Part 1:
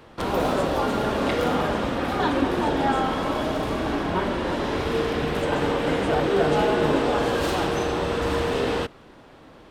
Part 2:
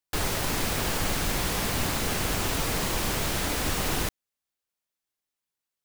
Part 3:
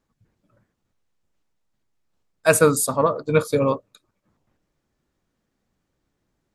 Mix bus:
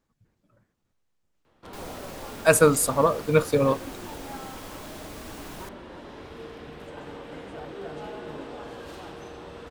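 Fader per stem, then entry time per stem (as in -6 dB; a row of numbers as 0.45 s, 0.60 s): -17.0 dB, -15.5 dB, -1.5 dB; 1.45 s, 1.60 s, 0.00 s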